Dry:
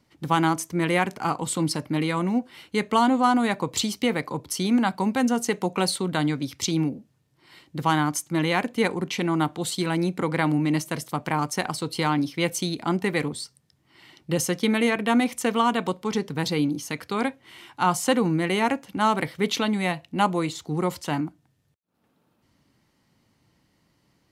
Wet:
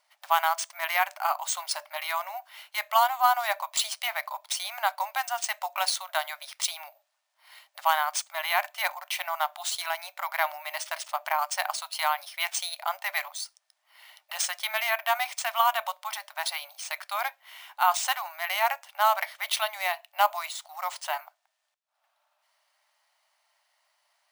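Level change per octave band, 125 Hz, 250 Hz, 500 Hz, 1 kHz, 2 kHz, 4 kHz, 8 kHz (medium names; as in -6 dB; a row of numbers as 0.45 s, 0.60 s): under -40 dB, under -40 dB, -9.0 dB, 0.0 dB, 0.0 dB, -0.5 dB, -0.5 dB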